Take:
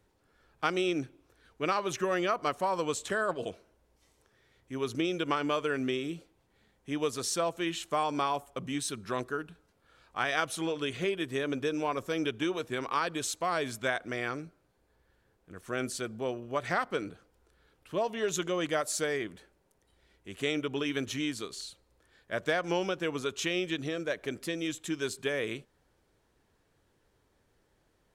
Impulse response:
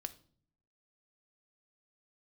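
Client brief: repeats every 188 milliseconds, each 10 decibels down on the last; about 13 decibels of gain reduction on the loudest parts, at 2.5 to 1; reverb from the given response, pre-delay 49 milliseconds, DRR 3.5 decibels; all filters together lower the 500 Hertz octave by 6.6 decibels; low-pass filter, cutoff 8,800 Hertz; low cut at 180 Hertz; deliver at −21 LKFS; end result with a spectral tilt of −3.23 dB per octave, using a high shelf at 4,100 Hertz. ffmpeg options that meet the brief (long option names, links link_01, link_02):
-filter_complex "[0:a]highpass=180,lowpass=8800,equalizer=frequency=500:width_type=o:gain=-8.5,highshelf=frequency=4100:gain=-3.5,acompressor=threshold=-47dB:ratio=2.5,aecho=1:1:188|376|564|752:0.316|0.101|0.0324|0.0104,asplit=2[link_01][link_02];[1:a]atrim=start_sample=2205,adelay=49[link_03];[link_02][link_03]afir=irnorm=-1:irlink=0,volume=-1dB[link_04];[link_01][link_04]amix=inputs=2:normalize=0,volume=23dB"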